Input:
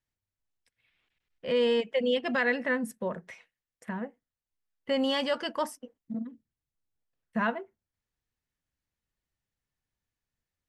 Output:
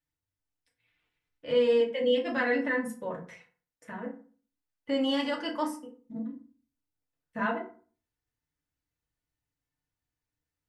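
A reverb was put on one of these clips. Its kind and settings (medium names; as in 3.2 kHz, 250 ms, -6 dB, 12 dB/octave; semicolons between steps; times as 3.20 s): FDN reverb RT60 0.41 s, low-frequency decay 1.2×, high-frequency decay 0.6×, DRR -3 dB; trim -6 dB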